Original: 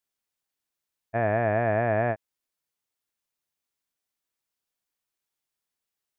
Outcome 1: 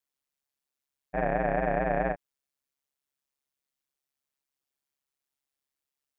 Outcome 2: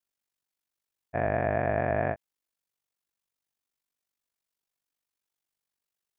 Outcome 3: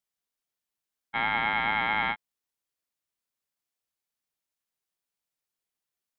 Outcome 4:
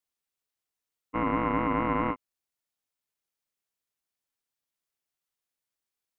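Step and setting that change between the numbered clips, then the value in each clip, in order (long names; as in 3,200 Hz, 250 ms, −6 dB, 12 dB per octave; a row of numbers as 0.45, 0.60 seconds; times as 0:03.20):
ring modulation, frequency: 69, 24, 1,500, 380 Hertz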